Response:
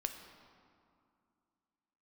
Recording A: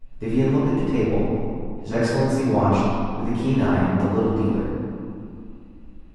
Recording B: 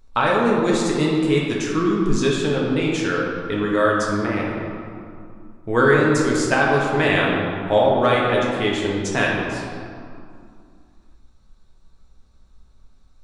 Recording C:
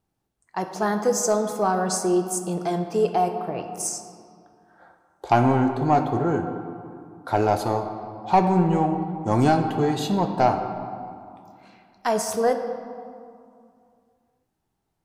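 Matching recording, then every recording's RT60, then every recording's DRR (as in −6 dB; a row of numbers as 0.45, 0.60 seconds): C; 2.4, 2.4, 2.4 seconds; −13.5, −4.0, 5.5 decibels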